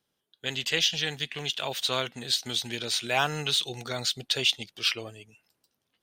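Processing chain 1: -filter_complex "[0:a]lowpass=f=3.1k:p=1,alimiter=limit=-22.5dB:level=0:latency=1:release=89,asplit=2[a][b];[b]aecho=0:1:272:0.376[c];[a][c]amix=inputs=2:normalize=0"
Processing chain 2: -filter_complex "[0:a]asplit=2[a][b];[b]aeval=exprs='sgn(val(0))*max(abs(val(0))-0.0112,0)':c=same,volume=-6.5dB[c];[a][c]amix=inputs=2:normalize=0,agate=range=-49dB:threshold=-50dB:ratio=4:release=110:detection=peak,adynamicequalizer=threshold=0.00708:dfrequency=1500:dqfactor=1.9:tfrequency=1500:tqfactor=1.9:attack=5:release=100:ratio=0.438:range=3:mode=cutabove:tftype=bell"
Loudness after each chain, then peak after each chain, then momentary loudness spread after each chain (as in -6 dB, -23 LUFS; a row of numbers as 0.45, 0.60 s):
-34.0, -25.0 LUFS; -20.5, -6.5 dBFS; 7, 8 LU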